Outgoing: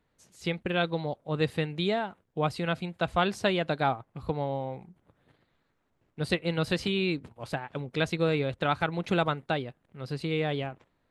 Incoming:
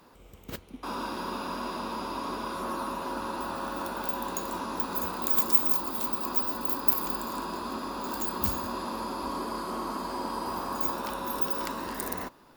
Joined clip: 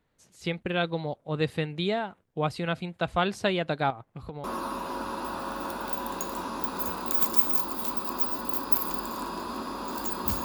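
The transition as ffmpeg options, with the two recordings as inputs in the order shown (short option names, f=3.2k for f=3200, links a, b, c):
-filter_complex "[0:a]asettb=1/sr,asplit=3[a][b][c];[a]atrim=end=3.904[d];[b]atrim=start=3.9:end=4.44,asetpts=PTS-STARTPTS,afade=t=in:d=0.004:c=qsin,afade=t=out:st=0.536:d=0.004:c=qsin,acompressor=threshold=-33dB:ratio=10:attack=3.2:release=140:knee=1:detection=peak[e];[c]atrim=start=4.436[f];[d][e]acrossfade=d=0.004:c1=hsin:c2=qsin[g];[g][f]acrossfade=d=0.004:c1=qsin:c2=hsin,apad=whole_dur=10.44,atrim=end=10.44,atrim=end=4.442[h];[1:a]atrim=start=2.598:end=8.6[i];[h][i]acrossfade=d=0.004:c1=hsin:c2=hsin"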